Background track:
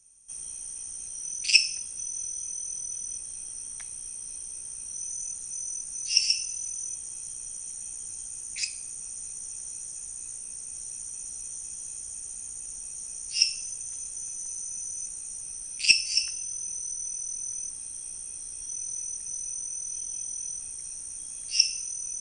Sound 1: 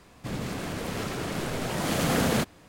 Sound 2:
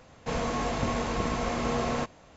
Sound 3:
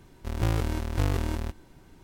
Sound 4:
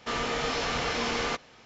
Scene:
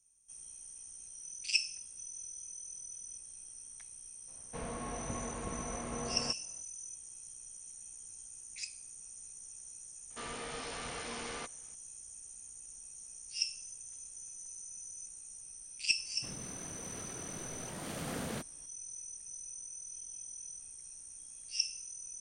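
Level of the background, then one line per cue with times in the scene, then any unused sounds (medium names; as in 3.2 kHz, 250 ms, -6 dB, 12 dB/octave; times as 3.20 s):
background track -11.5 dB
4.27 s: add 2 -11 dB, fades 0.02 s + distance through air 200 m
10.10 s: add 4 -13 dB
15.98 s: add 1 -15 dB
not used: 3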